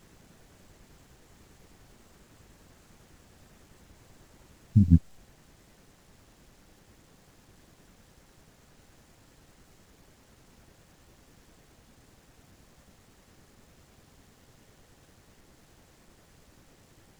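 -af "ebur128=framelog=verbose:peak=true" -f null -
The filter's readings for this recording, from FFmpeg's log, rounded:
Integrated loudness:
  I:         -23.7 LUFS
  Threshold: -48.2 LUFS
Loudness range:
  LRA:        26.5 LU
  Threshold: -57.4 LUFS
  LRA low:   -57.2 LUFS
  LRA high:  -30.7 LUFS
True peak:
  Peak:       -5.7 dBFS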